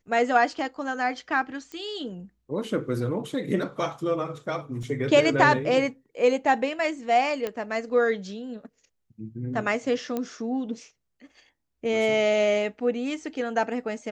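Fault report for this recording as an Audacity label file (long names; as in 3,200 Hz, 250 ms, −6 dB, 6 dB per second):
1.720000	1.720000	click −24 dBFS
4.830000	4.830000	drop-out 2.5 ms
7.470000	7.470000	click −16 dBFS
10.170000	10.170000	click −16 dBFS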